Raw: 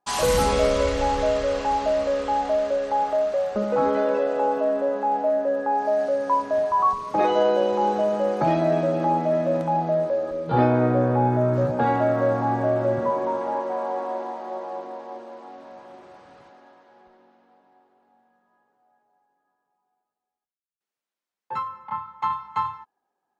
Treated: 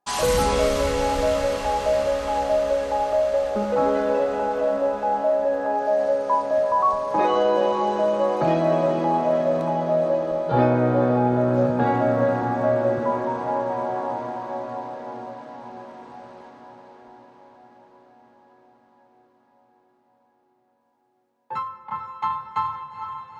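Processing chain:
feedback delay with all-pass diffusion 458 ms, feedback 71%, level −8.5 dB

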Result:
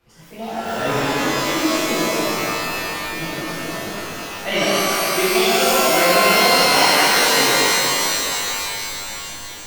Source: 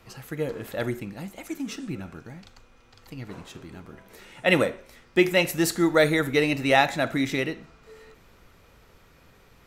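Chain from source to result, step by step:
pitch shifter swept by a sawtooth +12 semitones, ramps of 736 ms
automatic gain control gain up to 12 dB
reverb with rising layers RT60 3.5 s, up +12 semitones, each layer −2 dB, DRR −12 dB
level −12 dB

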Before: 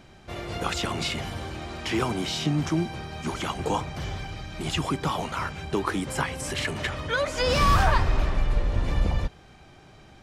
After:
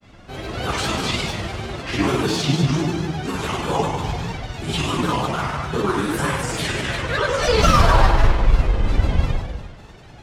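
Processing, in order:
dense smooth reverb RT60 1.5 s, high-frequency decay 0.95×, DRR −10 dB
granular cloud, spray 11 ms, pitch spread up and down by 3 semitones
level −3 dB

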